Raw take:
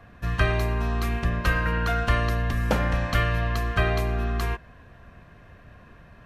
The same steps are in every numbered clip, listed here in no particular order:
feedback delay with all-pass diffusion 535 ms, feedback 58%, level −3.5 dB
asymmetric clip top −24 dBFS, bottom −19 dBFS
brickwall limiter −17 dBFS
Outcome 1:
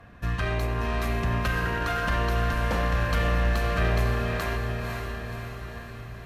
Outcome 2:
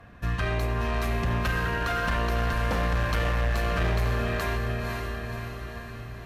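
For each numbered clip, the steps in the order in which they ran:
brickwall limiter, then asymmetric clip, then feedback delay with all-pass diffusion
brickwall limiter, then feedback delay with all-pass diffusion, then asymmetric clip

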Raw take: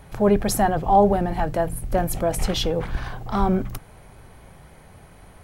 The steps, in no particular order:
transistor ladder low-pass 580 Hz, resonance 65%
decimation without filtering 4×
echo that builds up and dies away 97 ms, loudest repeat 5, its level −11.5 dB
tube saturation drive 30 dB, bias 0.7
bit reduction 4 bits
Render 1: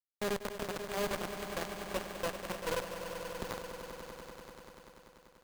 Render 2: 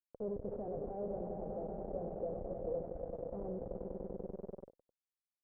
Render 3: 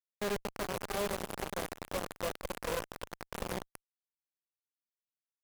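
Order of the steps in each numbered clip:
transistor ladder low-pass, then bit reduction, then tube saturation, then echo that builds up and dies away, then decimation without filtering
echo that builds up and dies away, then bit reduction, then tube saturation, then decimation without filtering, then transistor ladder low-pass
transistor ladder low-pass, then decimation without filtering, then echo that builds up and dies away, then bit reduction, then tube saturation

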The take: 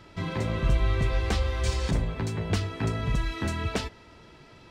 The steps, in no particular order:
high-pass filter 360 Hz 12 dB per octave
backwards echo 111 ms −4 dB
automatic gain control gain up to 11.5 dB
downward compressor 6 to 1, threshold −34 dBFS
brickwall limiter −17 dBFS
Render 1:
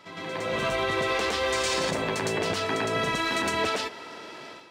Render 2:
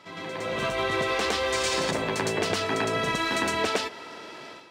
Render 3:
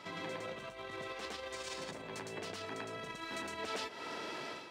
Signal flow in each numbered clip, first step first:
high-pass filter, then downward compressor, then backwards echo, then automatic gain control, then brickwall limiter
backwards echo, then brickwall limiter, then high-pass filter, then downward compressor, then automatic gain control
automatic gain control, then backwards echo, then brickwall limiter, then downward compressor, then high-pass filter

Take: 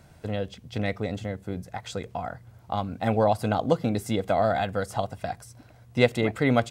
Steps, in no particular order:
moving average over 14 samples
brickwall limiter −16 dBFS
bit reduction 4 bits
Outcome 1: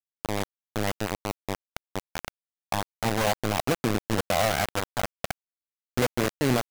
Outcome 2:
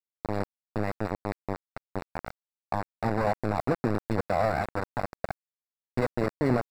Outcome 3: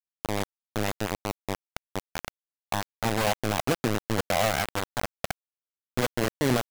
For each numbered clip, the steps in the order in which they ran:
moving average, then brickwall limiter, then bit reduction
brickwall limiter, then bit reduction, then moving average
brickwall limiter, then moving average, then bit reduction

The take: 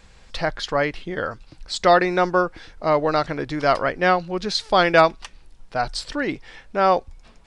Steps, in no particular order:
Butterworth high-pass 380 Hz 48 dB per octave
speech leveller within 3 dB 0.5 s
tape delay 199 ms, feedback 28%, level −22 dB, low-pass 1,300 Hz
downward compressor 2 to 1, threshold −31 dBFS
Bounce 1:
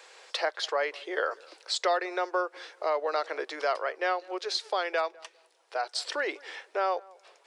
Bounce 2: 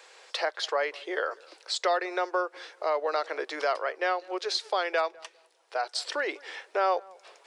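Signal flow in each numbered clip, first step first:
downward compressor, then Butterworth high-pass, then speech leveller, then tape delay
Butterworth high-pass, then speech leveller, then downward compressor, then tape delay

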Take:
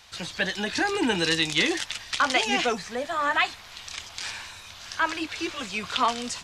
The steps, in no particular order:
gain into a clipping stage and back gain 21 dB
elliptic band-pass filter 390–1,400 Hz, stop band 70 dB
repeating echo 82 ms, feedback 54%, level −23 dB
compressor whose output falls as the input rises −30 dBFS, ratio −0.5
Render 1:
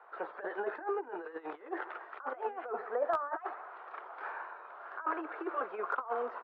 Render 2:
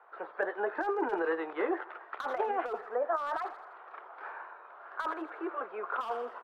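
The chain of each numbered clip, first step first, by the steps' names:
repeating echo, then compressor whose output falls as the input rises, then elliptic band-pass filter, then gain into a clipping stage and back
elliptic band-pass filter, then gain into a clipping stage and back, then repeating echo, then compressor whose output falls as the input rises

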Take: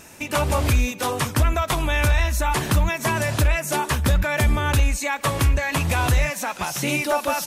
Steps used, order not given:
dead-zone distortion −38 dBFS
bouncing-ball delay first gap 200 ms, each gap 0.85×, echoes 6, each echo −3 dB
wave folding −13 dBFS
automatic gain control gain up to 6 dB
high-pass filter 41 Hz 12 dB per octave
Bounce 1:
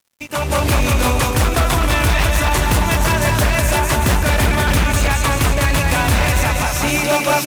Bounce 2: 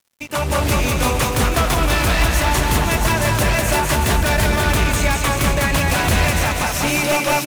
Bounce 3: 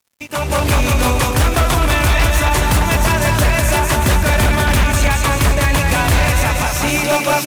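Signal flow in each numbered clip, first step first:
bouncing-ball delay, then wave folding, then high-pass filter, then dead-zone distortion, then automatic gain control
high-pass filter, then dead-zone distortion, then automatic gain control, then wave folding, then bouncing-ball delay
bouncing-ball delay, then dead-zone distortion, then high-pass filter, then wave folding, then automatic gain control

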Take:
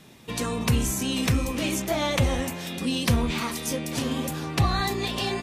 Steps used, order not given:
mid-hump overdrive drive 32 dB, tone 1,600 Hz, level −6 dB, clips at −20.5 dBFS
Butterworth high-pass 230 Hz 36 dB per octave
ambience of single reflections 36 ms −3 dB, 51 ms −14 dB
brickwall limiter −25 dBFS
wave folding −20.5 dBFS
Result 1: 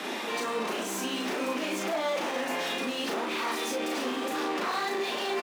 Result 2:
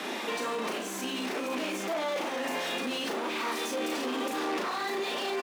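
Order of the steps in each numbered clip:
wave folding, then mid-hump overdrive, then Butterworth high-pass, then brickwall limiter, then ambience of single reflections
wave folding, then ambience of single reflections, then mid-hump overdrive, then brickwall limiter, then Butterworth high-pass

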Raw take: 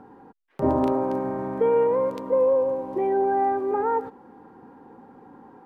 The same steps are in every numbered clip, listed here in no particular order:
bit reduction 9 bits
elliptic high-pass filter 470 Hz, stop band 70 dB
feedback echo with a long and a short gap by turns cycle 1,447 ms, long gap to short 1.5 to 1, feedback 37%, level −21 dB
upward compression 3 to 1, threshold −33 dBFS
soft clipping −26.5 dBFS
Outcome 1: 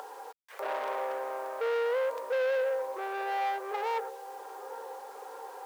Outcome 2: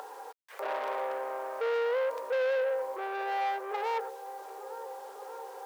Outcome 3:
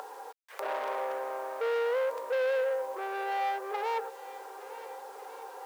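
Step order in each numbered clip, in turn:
upward compression, then feedback echo with a long and a short gap by turns, then soft clipping, then bit reduction, then elliptic high-pass filter
feedback echo with a long and a short gap by turns, then upward compression, then bit reduction, then soft clipping, then elliptic high-pass filter
soft clipping, then feedback echo with a long and a short gap by turns, then upward compression, then bit reduction, then elliptic high-pass filter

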